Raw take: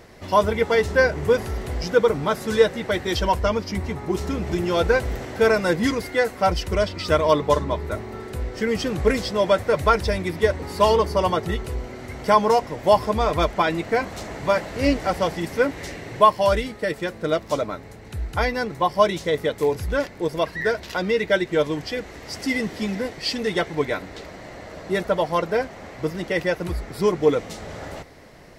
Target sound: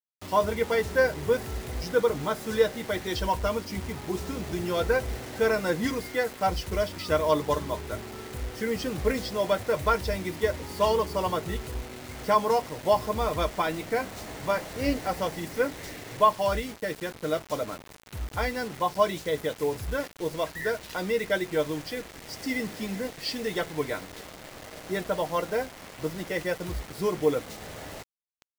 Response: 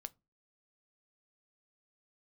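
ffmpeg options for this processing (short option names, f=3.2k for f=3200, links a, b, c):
-filter_complex "[1:a]atrim=start_sample=2205,asetrate=52920,aresample=44100[a];[0:a][a]afir=irnorm=-1:irlink=0,acrusher=bits=6:mix=0:aa=0.000001"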